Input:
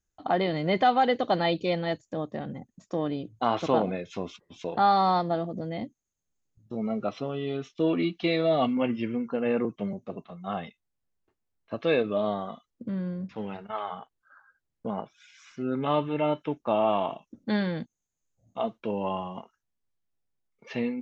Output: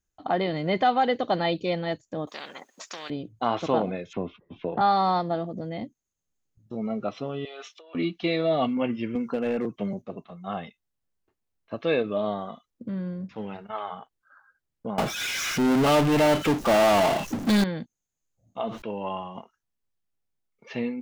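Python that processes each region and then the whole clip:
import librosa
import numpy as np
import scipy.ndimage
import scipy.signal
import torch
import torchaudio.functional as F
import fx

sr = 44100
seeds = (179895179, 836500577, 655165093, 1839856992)

y = fx.chain(x, sr, fx.highpass(hz=530.0, slope=24),
    fx.high_shelf(hz=5900.0, db=-6.0),
    fx.spectral_comp(ratio=4.0), at=(2.27, 3.1))
y = fx.chain(y, sr, fx.lowpass(hz=3100.0, slope=24),
    fx.tilt_shelf(db=4.0, hz=930.0),
    fx.band_squash(depth_pct=40), at=(4.13, 4.81))
y = fx.chain(y, sr, fx.highpass(hz=580.0, slope=24),
    fx.over_compress(threshold_db=-45.0, ratio=-1.0), at=(7.45, 7.95))
y = fx.chain(y, sr, fx.clip_hard(threshold_db=-20.5),
    fx.band_squash(depth_pct=70), at=(9.15, 10.02))
y = fx.chain(y, sr, fx.notch(hz=1000.0, q=6.6),
    fx.power_curve(exponent=0.35), at=(14.98, 17.64))
y = fx.chain(y, sr, fx.lowpass(hz=3000.0, slope=6),
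    fx.tilt_shelf(db=-4.0, hz=940.0),
    fx.sustainer(db_per_s=84.0), at=(18.61, 19.35))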